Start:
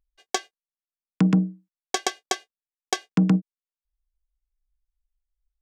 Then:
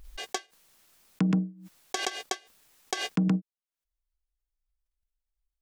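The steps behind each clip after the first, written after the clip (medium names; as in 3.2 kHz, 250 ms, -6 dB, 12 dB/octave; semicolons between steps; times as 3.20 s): swell ahead of each attack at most 59 dB/s; trim -6.5 dB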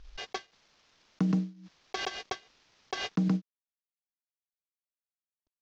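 CVSD coder 32 kbps; trim -2 dB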